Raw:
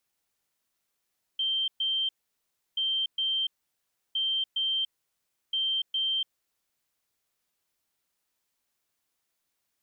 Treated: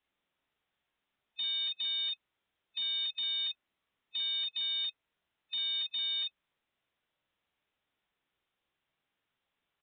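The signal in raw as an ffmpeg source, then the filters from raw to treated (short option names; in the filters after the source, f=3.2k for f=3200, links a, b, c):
-f lavfi -i "aevalsrc='0.0562*sin(2*PI*3140*t)*clip(min(mod(mod(t,1.38),0.41),0.29-mod(mod(t,1.38),0.41))/0.005,0,1)*lt(mod(t,1.38),0.82)':d=5.52:s=44100"
-af "afftfilt=real='real(if(lt(b,1008),b+24*(1-2*mod(floor(b/24),2)),b),0)':imag='imag(if(lt(b,1008),b+24*(1-2*mod(floor(b/24),2)),b),0)':win_size=2048:overlap=0.75,aecho=1:1:15|30|47:0.316|0.158|0.596,aresample=8000,asoftclip=type=hard:threshold=-32.5dB,aresample=44100"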